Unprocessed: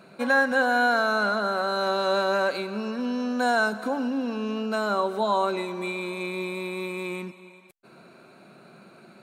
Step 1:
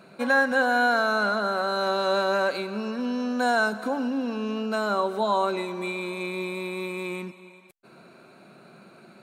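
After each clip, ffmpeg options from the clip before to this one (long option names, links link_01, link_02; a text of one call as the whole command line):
ffmpeg -i in.wav -af anull out.wav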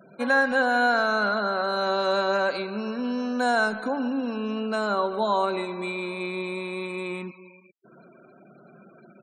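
ffmpeg -i in.wav -filter_complex "[0:a]asplit=2[link_01][link_02];[link_02]adelay=140,highpass=300,lowpass=3400,asoftclip=type=hard:threshold=-19dB,volume=-15dB[link_03];[link_01][link_03]amix=inputs=2:normalize=0,afftfilt=real='re*gte(hypot(re,im),0.00501)':imag='im*gte(hypot(re,im),0.00501)':win_size=1024:overlap=0.75" out.wav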